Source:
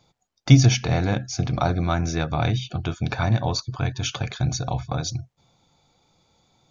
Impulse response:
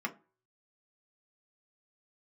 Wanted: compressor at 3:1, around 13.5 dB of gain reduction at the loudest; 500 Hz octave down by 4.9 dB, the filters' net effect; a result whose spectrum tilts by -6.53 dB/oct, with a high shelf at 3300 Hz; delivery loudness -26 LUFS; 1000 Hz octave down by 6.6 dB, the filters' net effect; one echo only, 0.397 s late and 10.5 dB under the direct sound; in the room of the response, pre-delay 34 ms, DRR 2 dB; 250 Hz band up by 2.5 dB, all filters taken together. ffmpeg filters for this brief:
-filter_complex "[0:a]equalizer=f=250:t=o:g=5.5,equalizer=f=500:t=o:g=-6,equalizer=f=1k:t=o:g=-7,highshelf=f=3.3k:g=-5,acompressor=threshold=-24dB:ratio=3,aecho=1:1:397:0.299,asplit=2[a][b];[1:a]atrim=start_sample=2205,adelay=34[c];[b][c]afir=irnorm=-1:irlink=0,volume=-6.5dB[d];[a][d]amix=inputs=2:normalize=0,volume=1dB"

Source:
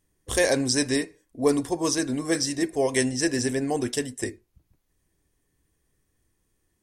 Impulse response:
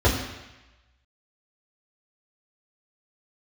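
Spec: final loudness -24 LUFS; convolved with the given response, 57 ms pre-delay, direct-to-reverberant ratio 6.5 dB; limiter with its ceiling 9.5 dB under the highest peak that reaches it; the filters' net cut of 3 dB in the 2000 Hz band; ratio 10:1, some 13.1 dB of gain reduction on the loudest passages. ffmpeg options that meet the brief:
-filter_complex "[0:a]equalizer=f=2k:t=o:g=-3.5,acompressor=threshold=-29dB:ratio=10,alimiter=level_in=2.5dB:limit=-24dB:level=0:latency=1,volume=-2.5dB,asplit=2[a][b];[1:a]atrim=start_sample=2205,adelay=57[c];[b][c]afir=irnorm=-1:irlink=0,volume=-24.5dB[d];[a][d]amix=inputs=2:normalize=0,volume=10dB"

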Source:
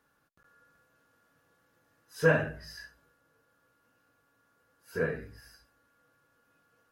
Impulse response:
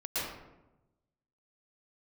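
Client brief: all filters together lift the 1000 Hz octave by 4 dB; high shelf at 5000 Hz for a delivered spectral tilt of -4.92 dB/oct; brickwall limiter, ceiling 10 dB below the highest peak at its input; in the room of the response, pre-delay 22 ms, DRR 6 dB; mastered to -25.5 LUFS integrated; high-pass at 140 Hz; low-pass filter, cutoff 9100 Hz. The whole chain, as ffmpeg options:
-filter_complex "[0:a]highpass=140,lowpass=9.1k,equalizer=f=1k:t=o:g=5,highshelf=f=5k:g=4.5,alimiter=limit=-19.5dB:level=0:latency=1,asplit=2[a][b];[1:a]atrim=start_sample=2205,adelay=22[c];[b][c]afir=irnorm=-1:irlink=0,volume=-12dB[d];[a][d]amix=inputs=2:normalize=0,volume=9dB"

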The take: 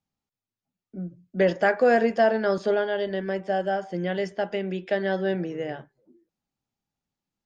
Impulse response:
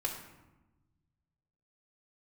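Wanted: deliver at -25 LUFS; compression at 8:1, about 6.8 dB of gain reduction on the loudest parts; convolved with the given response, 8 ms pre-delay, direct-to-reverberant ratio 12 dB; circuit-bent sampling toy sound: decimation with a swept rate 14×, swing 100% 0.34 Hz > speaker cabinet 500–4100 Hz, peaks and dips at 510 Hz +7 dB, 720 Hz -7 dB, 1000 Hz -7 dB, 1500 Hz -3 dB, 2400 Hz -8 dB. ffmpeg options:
-filter_complex "[0:a]acompressor=threshold=-22dB:ratio=8,asplit=2[a][b];[1:a]atrim=start_sample=2205,adelay=8[c];[b][c]afir=irnorm=-1:irlink=0,volume=-15.5dB[d];[a][d]amix=inputs=2:normalize=0,acrusher=samples=14:mix=1:aa=0.000001:lfo=1:lforange=14:lforate=0.34,highpass=500,equalizer=f=510:t=q:w=4:g=7,equalizer=f=720:t=q:w=4:g=-7,equalizer=f=1k:t=q:w=4:g=-7,equalizer=f=1.5k:t=q:w=4:g=-3,equalizer=f=2.4k:t=q:w=4:g=-8,lowpass=f=4.1k:w=0.5412,lowpass=f=4.1k:w=1.3066,volume=6dB"

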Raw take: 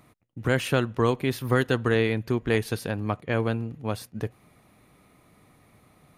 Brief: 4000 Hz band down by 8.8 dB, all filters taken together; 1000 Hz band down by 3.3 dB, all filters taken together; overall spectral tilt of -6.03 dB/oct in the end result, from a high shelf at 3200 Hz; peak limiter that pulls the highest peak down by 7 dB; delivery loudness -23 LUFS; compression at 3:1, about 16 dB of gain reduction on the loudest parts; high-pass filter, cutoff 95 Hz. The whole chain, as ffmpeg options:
-af "highpass=95,equalizer=f=1k:t=o:g=-3,highshelf=f=3.2k:g=-7,equalizer=f=4k:t=o:g=-7,acompressor=threshold=-41dB:ratio=3,volume=21.5dB,alimiter=limit=-10dB:level=0:latency=1"

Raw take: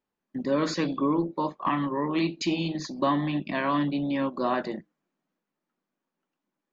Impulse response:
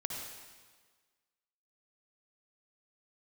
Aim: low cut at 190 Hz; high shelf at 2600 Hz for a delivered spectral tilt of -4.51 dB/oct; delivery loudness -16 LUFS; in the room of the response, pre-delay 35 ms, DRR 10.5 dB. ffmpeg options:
-filter_complex "[0:a]highpass=190,highshelf=f=2.6k:g=-3.5,asplit=2[a][b];[1:a]atrim=start_sample=2205,adelay=35[c];[b][c]afir=irnorm=-1:irlink=0,volume=-12dB[d];[a][d]amix=inputs=2:normalize=0,volume=12dB"

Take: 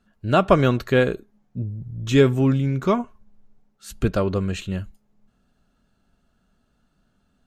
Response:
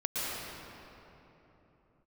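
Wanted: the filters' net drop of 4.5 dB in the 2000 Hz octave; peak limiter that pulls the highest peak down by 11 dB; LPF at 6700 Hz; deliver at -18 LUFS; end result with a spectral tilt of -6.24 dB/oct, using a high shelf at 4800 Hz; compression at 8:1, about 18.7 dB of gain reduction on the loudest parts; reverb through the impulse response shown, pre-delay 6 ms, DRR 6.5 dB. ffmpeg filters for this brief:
-filter_complex "[0:a]lowpass=6.7k,equalizer=f=2k:t=o:g=-7,highshelf=f=4.8k:g=4.5,acompressor=threshold=-30dB:ratio=8,alimiter=level_in=6dB:limit=-24dB:level=0:latency=1,volume=-6dB,asplit=2[a][b];[1:a]atrim=start_sample=2205,adelay=6[c];[b][c]afir=irnorm=-1:irlink=0,volume=-14.5dB[d];[a][d]amix=inputs=2:normalize=0,volume=21.5dB"

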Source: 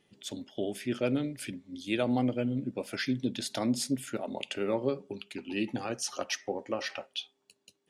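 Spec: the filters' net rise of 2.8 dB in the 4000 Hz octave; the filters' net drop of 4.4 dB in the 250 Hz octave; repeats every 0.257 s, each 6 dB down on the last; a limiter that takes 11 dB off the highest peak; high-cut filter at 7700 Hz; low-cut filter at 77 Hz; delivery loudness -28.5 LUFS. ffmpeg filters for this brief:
-af "highpass=77,lowpass=7.7k,equalizer=f=250:t=o:g=-5,equalizer=f=4k:t=o:g=4,alimiter=level_in=2.5dB:limit=-24dB:level=0:latency=1,volume=-2.5dB,aecho=1:1:257|514|771|1028|1285|1542:0.501|0.251|0.125|0.0626|0.0313|0.0157,volume=8.5dB"

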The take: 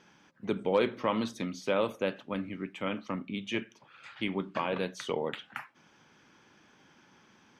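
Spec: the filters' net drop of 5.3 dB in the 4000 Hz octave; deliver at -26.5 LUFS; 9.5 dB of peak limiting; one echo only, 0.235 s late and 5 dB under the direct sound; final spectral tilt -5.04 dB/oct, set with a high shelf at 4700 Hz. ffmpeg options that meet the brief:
-af "equalizer=f=4k:t=o:g=-5.5,highshelf=f=4.7k:g=-4.5,alimiter=level_in=1dB:limit=-24dB:level=0:latency=1,volume=-1dB,aecho=1:1:235:0.562,volume=10.5dB"

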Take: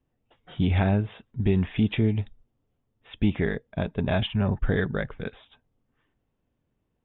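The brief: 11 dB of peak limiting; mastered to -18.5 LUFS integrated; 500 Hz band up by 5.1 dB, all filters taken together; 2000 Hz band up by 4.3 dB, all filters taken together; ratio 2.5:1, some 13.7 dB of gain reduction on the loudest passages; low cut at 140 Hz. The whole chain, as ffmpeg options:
-af "highpass=140,equalizer=f=500:t=o:g=6.5,equalizer=f=2k:t=o:g=5,acompressor=threshold=-39dB:ratio=2.5,volume=25dB,alimiter=limit=-6dB:level=0:latency=1"

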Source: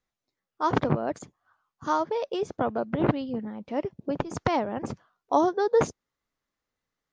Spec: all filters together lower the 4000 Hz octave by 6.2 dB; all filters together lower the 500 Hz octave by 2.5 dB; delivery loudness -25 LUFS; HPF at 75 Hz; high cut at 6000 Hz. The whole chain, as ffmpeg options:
-af "highpass=75,lowpass=6k,equalizer=f=500:t=o:g=-3,equalizer=f=4k:t=o:g=-8,volume=4.5dB"

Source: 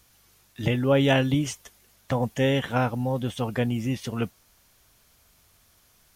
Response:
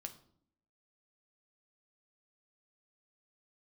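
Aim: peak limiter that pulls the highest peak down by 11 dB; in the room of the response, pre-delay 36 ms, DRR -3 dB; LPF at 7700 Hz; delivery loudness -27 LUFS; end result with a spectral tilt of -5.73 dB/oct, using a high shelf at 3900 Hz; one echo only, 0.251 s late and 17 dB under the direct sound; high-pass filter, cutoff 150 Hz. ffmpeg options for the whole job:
-filter_complex "[0:a]highpass=150,lowpass=7.7k,highshelf=f=3.9k:g=-4.5,alimiter=limit=-18.5dB:level=0:latency=1,aecho=1:1:251:0.141,asplit=2[a][b];[1:a]atrim=start_sample=2205,adelay=36[c];[b][c]afir=irnorm=-1:irlink=0,volume=7dB[d];[a][d]amix=inputs=2:normalize=0,volume=-2dB"

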